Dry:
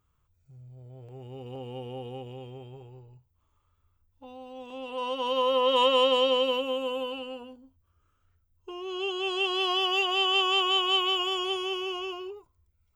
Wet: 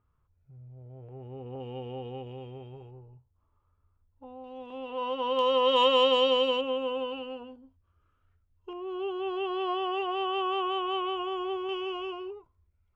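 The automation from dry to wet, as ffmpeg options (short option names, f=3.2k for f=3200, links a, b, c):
-af "asetnsamples=n=441:p=0,asendcmd='1.6 lowpass f 3200;2.91 lowpass f 1400;4.44 lowpass f 2600;5.39 lowpass f 6000;6.61 lowpass f 2900;8.73 lowpass f 1400;11.69 lowpass f 2400',lowpass=1.7k"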